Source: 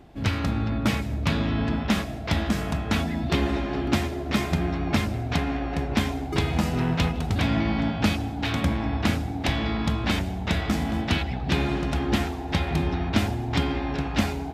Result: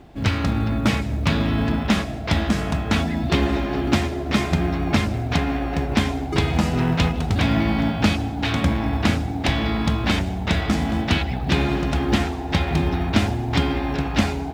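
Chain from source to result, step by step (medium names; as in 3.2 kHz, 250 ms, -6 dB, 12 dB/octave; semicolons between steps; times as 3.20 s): low-pass 9.8 kHz 12 dB/octave; companded quantiser 8-bit; trim +4 dB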